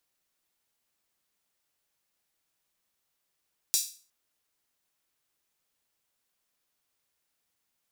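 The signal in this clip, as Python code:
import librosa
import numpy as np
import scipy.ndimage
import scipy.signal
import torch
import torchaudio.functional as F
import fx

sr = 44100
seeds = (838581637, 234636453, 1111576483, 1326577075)

y = fx.drum_hat_open(sr, length_s=0.36, from_hz=5200.0, decay_s=0.39)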